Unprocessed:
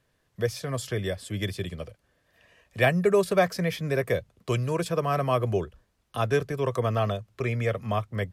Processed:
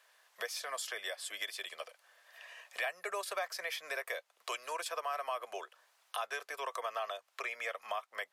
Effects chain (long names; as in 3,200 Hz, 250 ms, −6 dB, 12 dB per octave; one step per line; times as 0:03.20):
high-pass filter 710 Hz 24 dB per octave
in parallel at +0.5 dB: brickwall limiter −22.5 dBFS, peak gain reduction 10.5 dB
on the sum: downward compressor 2.5 to 1, threshold −44 dBFS, peak gain reduction 17.5 dB
level +2 dB